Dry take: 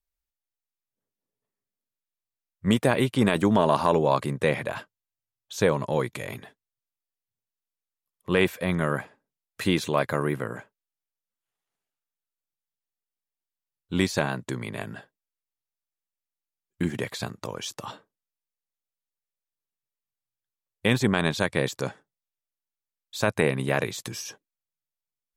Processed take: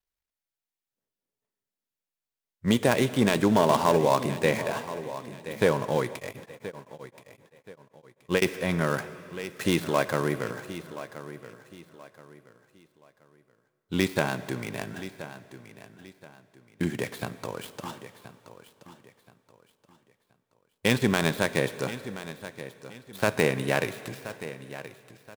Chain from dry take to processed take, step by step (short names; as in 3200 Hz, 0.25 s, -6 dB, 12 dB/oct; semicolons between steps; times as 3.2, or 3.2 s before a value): switching dead time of 0.095 ms; low shelf 120 Hz -5 dB; notch 1200 Hz, Q 20; feedback echo 1.026 s, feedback 32%, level -14 dB; plate-style reverb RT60 2.9 s, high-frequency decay 1×, DRR 13.5 dB; 6.14–8.42 beating tremolo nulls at 7.7 Hz